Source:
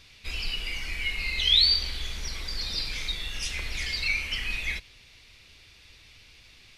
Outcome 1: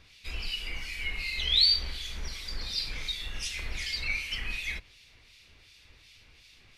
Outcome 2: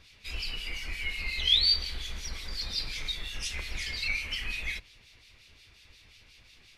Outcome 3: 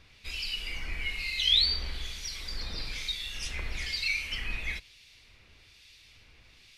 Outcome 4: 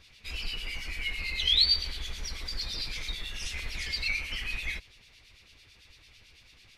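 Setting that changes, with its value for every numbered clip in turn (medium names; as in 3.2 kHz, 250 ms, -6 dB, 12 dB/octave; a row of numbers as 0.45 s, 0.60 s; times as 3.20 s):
harmonic tremolo, rate: 2.7 Hz, 5.6 Hz, 1.1 Hz, 9 Hz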